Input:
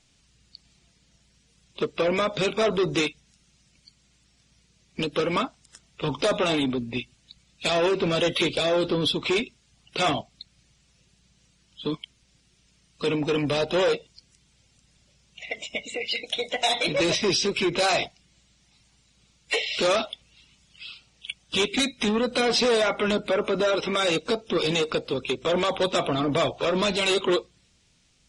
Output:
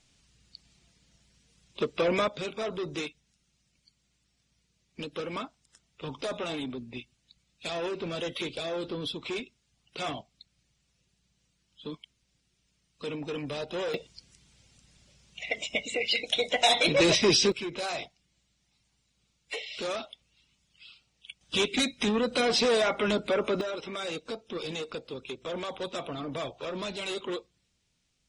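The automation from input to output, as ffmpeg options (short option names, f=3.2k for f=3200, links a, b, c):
-af "asetnsamples=n=441:p=0,asendcmd='2.28 volume volume -10.5dB;13.94 volume volume 1dB;17.52 volume volume -11dB;21.41 volume volume -3dB;23.61 volume volume -11.5dB',volume=-2.5dB"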